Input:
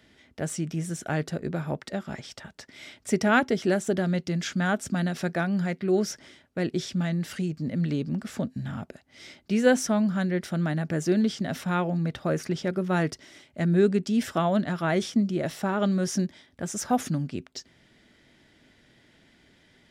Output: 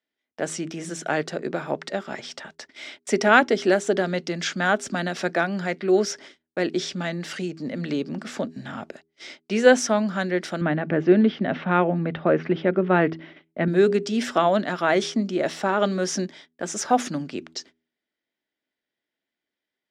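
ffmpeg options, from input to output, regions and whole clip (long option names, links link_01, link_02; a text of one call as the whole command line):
ffmpeg -i in.wav -filter_complex "[0:a]asettb=1/sr,asplit=3[link_01][link_02][link_03];[link_01]atrim=end=10.614[link_04];[link_02]atrim=start=10.61:end=13.68,asetpts=PTS-STARTPTS,afade=type=in:duration=0.004:curve=qsin,afade=type=out:start_time=3.066:duration=0.004:curve=qsin,lowpass=frequency=3000:width=0.5412,lowpass=frequency=3000:width=1.3066,lowshelf=frequency=280:gain=9[link_05];[link_03]atrim=start=13.676[link_06];[link_04][link_05]acrossfade=duration=0.004:curve1=hsin:curve2=qsin[link_07];[link_07][link_06]acrossfade=duration=0.004:curve1=qsin:curve2=hsin,agate=range=-32dB:threshold=-48dB:ratio=16:detection=peak,acrossover=split=250 8000:gain=0.112 1 0.126[link_08][link_09][link_10];[link_08][link_09][link_10]amix=inputs=3:normalize=0,bandreject=frequency=81.1:width_type=h:width=4,bandreject=frequency=162.2:width_type=h:width=4,bandreject=frequency=243.3:width_type=h:width=4,bandreject=frequency=324.4:width_type=h:width=4,bandreject=frequency=405.5:width_type=h:width=4,volume=6.5dB" out.wav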